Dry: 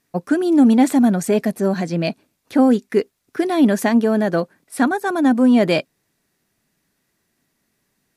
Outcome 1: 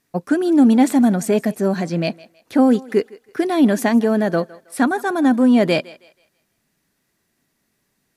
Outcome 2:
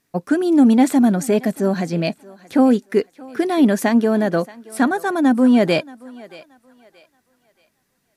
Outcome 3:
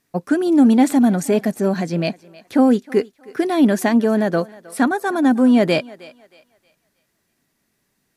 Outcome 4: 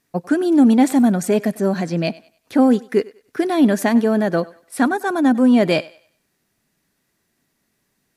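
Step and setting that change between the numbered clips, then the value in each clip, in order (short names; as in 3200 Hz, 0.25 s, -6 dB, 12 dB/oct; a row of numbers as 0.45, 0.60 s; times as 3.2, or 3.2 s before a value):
thinning echo, time: 160, 627, 314, 97 ms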